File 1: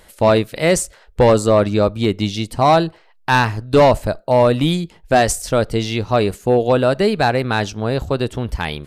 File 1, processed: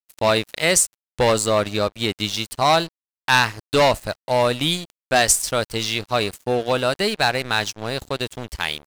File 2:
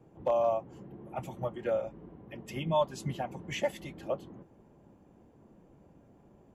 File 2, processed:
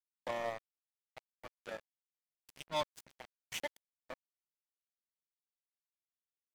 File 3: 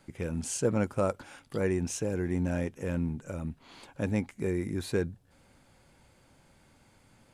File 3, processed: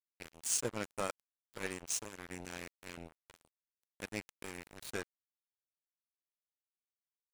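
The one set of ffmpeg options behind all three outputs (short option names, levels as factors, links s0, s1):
-af "tiltshelf=f=1400:g=-7,aeval=exprs='sgn(val(0))*max(abs(val(0))-0.0224,0)':c=same"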